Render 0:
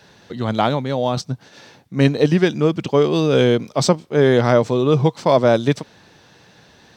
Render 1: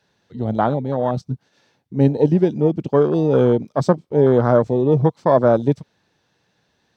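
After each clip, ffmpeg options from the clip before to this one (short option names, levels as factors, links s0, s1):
-af "afwtdn=0.1"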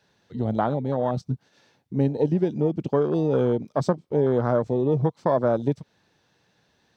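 -af "acompressor=threshold=0.0708:ratio=2"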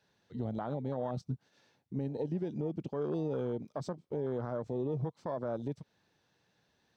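-af "alimiter=limit=0.126:level=0:latency=1:release=99,volume=0.398"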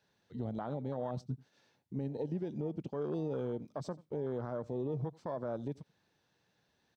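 -af "aecho=1:1:87:0.0708,volume=0.794"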